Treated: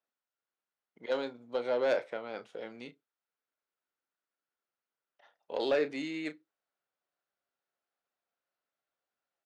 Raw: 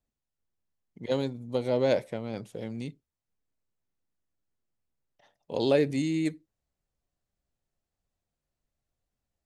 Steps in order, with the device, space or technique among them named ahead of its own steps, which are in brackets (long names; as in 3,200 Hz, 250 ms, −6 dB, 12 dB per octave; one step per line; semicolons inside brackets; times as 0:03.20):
intercom (band-pass filter 480–3,800 Hz; parametric band 1,400 Hz +8 dB 0.36 octaves; soft clipping −20.5 dBFS, distortion −17 dB; double-tracking delay 33 ms −12 dB)